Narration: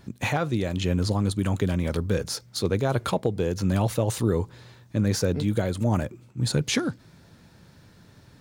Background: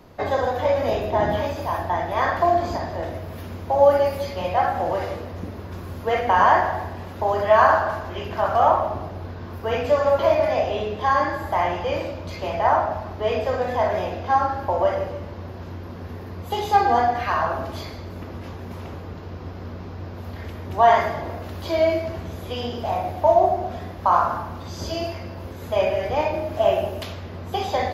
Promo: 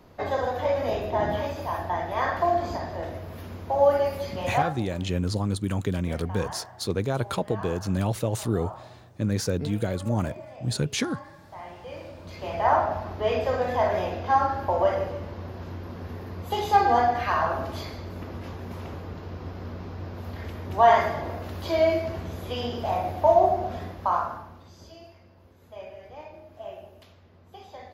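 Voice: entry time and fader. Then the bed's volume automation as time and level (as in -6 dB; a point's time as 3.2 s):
4.25 s, -2.5 dB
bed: 4.61 s -4.5 dB
4.89 s -23 dB
11.4 s -23 dB
12.73 s -2 dB
23.83 s -2 dB
24.99 s -20.5 dB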